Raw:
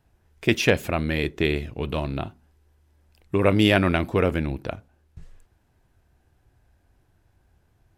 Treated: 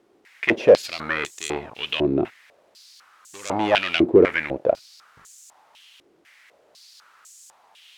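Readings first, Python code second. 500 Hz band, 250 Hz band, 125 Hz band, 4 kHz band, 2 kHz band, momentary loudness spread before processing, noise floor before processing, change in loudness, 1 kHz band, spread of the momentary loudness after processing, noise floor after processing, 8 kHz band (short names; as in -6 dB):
+5.5 dB, 0.0 dB, -10.5 dB, +1.5 dB, +1.5 dB, 15 LU, -65 dBFS, +2.5 dB, +3.0 dB, 14 LU, -60 dBFS, +3.0 dB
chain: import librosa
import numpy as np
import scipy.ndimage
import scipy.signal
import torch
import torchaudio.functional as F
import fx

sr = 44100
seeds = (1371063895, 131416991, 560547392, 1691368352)

p1 = fx.leveller(x, sr, passes=3)
p2 = fx.quant_dither(p1, sr, seeds[0], bits=6, dither='triangular')
p3 = p1 + F.gain(torch.from_numpy(p2), -6.0).numpy()
p4 = fx.filter_held_bandpass(p3, sr, hz=4.0, low_hz=360.0, high_hz=7100.0)
y = F.gain(torch.from_numpy(p4), 3.5).numpy()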